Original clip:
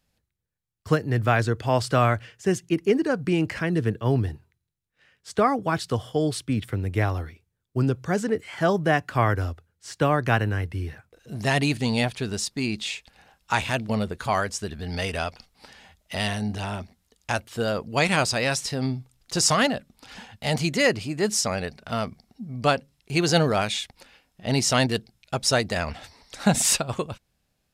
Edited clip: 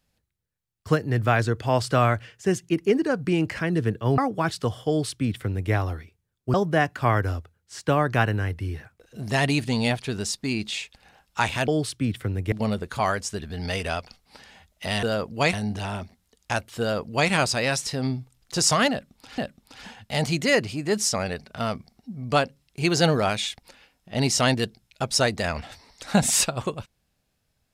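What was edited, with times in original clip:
4.18–5.46 s: delete
6.16–7.00 s: copy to 13.81 s
7.82–8.67 s: delete
17.59–18.09 s: copy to 16.32 s
19.70–20.17 s: loop, 2 plays

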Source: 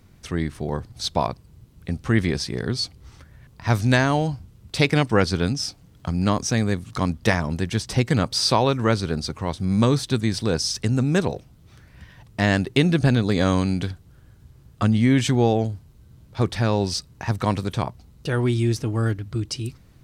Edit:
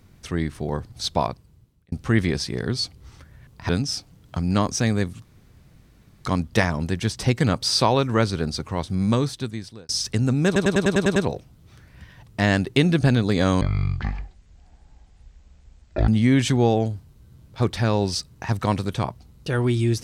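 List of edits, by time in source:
1.21–1.92 s: fade out
3.69–5.40 s: delete
6.95 s: insert room tone 1.01 s
9.62–10.59 s: fade out
11.16 s: stutter 0.10 s, 8 plays
13.61–14.87 s: speed 51%

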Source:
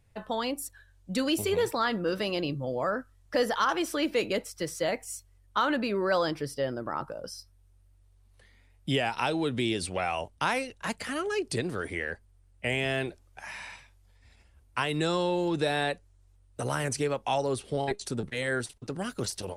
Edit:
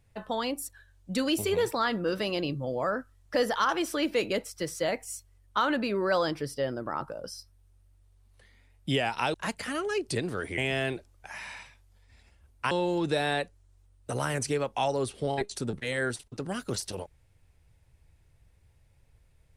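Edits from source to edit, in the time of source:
9.34–10.75 s: delete
11.99–12.71 s: delete
14.84–15.21 s: delete

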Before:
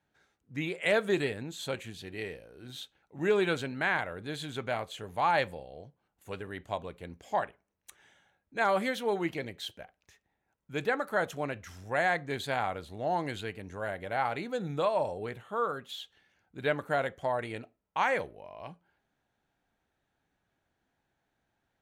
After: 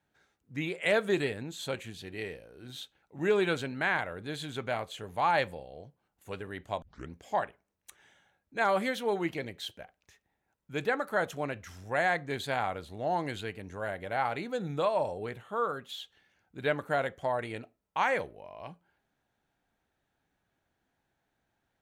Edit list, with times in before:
6.82 s: tape start 0.28 s

